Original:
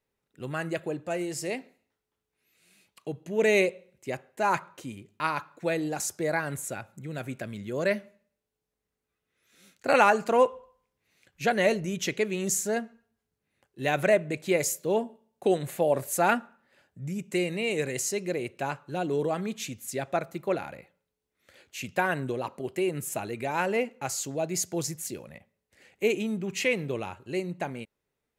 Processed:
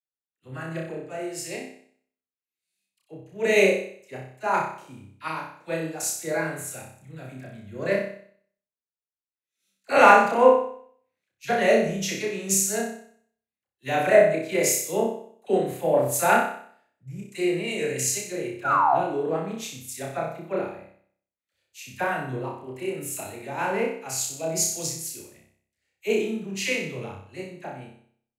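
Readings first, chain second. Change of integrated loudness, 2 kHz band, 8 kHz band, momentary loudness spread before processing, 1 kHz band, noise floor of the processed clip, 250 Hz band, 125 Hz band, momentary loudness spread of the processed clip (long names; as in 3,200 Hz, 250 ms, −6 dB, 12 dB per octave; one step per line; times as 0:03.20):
+4.5 dB, +3.5 dB, +6.0 dB, 13 LU, +5.5 dB, below −85 dBFS, +1.0 dB, 0.0 dB, 21 LU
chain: sound drawn into the spectrogram fall, 0:18.63–0:18.93, 640–1,500 Hz −23 dBFS
all-pass dispersion lows, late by 44 ms, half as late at 770 Hz
on a send: flutter between parallel walls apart 5.3 metres, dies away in 0.76 s
on the sum: multiband upward and downward expander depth 70%
level −2.5 dB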